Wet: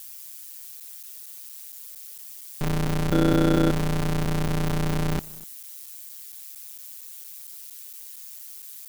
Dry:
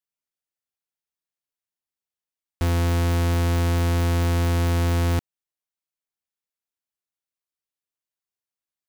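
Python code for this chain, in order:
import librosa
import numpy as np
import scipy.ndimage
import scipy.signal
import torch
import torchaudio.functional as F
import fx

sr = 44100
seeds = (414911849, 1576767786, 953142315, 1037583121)

p1 = x + 0.5 * 10.0 ** (-32.5 / 20.0) * np.diff(np.sign(x), prepend=np.sign(x[:1]))
p2 = p1 * np.sin(2.0 * np.pi * 70.0 * np.arange(len(p1)) / sr)
p3 = fx.small_body(p2, sr, hz=(320.0, 500.0, 1400.0, 3400.0), ring_ms=45, db=16, at=(3.12, 3.71))
p4 = p3 + fx.echo_single(p3, sr, ms=247, db=-22.5, dry=0)
y = fx.buffer_crackle(p4, sr, first_s=0.8, period_s=0.23, block=256, kind='zero')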